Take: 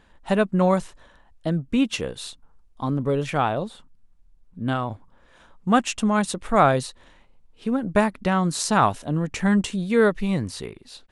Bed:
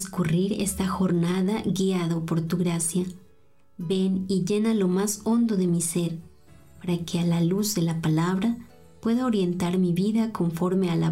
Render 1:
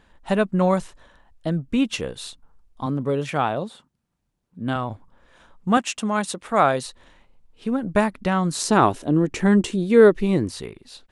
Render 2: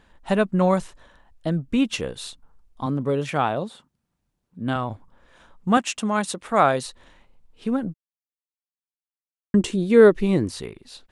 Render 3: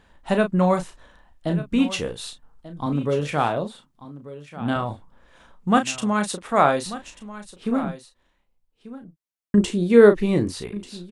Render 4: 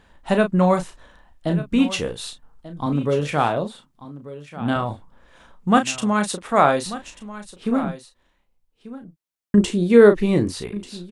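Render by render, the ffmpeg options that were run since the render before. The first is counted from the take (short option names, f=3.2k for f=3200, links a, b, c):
-filter_complex "[0:a]asettb=1/sr,asplit=3[a][b][c];[a]atrim=end=2.864[d];[b]atrim=start=2.86:end=4.76,asetpts=PTS-STARTPTS,afade=t=in:d=0.004:c=qsin,afade=t=out:st=1.896:d=0.004:c=qsin,highpass=110[e];[c]atrim=start=4.756[f];[d][e]acrossfade=d=0.004:c1=hsin:c2=qsin[g];[g][f]acrossfade=d=0.004:c1=qsin:c2=hsin,asettb=1/sr,asplit=3[h][i][j];[h]atrim=end=5.774[k];[i]atrim=start=5.77:end=6.85,asetpts=PTS-STARTPTS,afade=t=in:d=0.004:c=qsin,afade=t=out:st=1.076:d=0.004:c=qsin,highpass=f=260:p=1[l];[j]atrim=start=6.846[m];[k][l]acrossfade=d=0.004:c1=hsin:c2=qsin[n];[n][m]acrossfade=d=0.004:c1=qsin:c2=hsin,asettb=1/sr,asplit=3[o][p][q];[o]atrim=end=8.624[r];[p]atrim=start=8.62:end=10.49,asetpts=PTS-STARTPTS,afade=t=in:d=0.004:c=qsin,afade=t=out:st=1.866:d=0.004:c=qsin,equalizer=f=350:t=o:w=0.77:g=12[s];[q]atrim=start=10.486[t];[r][s]acrossfade=d=0.004:c1=hsin:c2=qsin[u];[u][t]acrossfade=d=0.004:c1=qsin:c2=hsin"
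-filter_complex "[0:a]asplit=3[a][b][c];[a]atrim=end=7.94,asetpts=PTS-STARTPTS,afade=t=out:st=7.936:d=0.004:c=hsin[d];[b]atrim=start=7.94:end=9.54,asetpts=PTS-STARTPTS,volume=0[e];[c]atrim=start=9.54,asetpts=PTS-STARTPTS,afade=t=in:d=0.004:c=hsin[f];[d][e][f]concat=n=3:v=0:a=1"
-filter_complex "[0:a]asplit=2[a][b];[b]adelay=34,volume=-8dB[c];[a][c]amix=inputs=2:normalize=0,aecho=1:1:1189:0.168"
-af "volume=2dB,alimiter=limit=-2dB:level=0:latency=1"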